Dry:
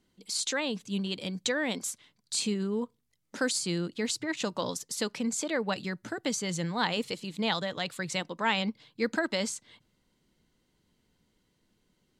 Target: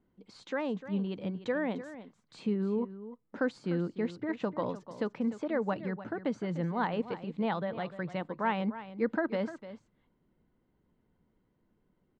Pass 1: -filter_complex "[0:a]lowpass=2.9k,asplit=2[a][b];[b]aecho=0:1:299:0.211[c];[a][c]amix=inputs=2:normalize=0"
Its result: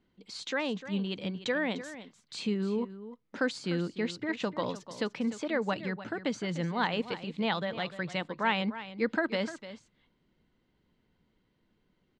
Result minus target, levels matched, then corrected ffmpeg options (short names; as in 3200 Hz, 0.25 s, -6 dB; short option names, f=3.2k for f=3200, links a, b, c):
4000 Hz band +11.0 dB
-filter_complex "[0:a]lowpass=1.3k,asplit=2[a][b];[b]aecho=0:1:299:0.211[c];[a][c]amix=inputs=2:normalize=0"